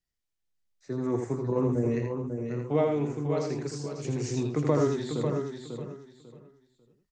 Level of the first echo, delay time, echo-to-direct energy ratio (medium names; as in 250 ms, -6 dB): -5.0 dB, 82 ms, -2.0 dB